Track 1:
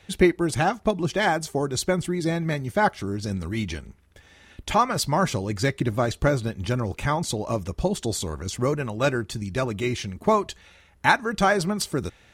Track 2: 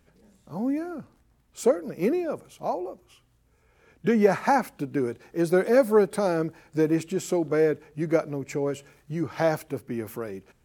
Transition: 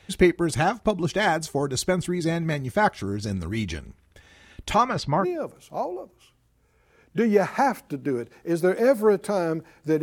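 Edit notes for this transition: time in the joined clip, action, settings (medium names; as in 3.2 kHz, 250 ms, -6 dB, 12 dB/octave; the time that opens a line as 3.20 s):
track 1
4.76–5.26 s: low-pass 8.8 kHz -> 1.5 kHz
5.23 s: go over to track 2 from 2.12 s, crossfade 0.06 s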